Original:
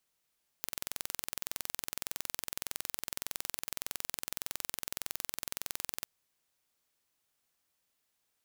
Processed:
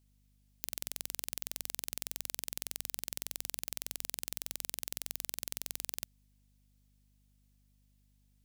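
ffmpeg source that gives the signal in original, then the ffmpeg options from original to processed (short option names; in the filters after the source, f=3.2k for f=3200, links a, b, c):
-f lavfi -i "aevalsrc='0.398*eq(mod(n,2032),0)':d=5.41:s=44100"
-af "equalizer=f=1.2k:t=o:w=1.5:g=-9,aeval=exprs='val(0)+0.000398*(sin(2*PI*50*n/s)+sin(2*PI*2*50*n/s)/2+sin(2*PI*3*50*n/s)/3+sin(2*PI*4*50*n/s)/4+sin(2*PI*5*50*n/s)/5)':c=same"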